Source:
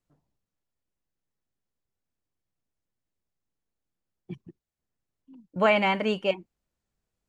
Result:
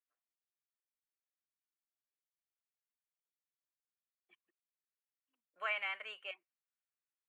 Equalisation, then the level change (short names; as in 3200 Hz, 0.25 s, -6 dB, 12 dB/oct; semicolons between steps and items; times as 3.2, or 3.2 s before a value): ladder high-pass 860 Hz, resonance 60%; fixed phaser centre 2200 Hz, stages 4; -1.0 dB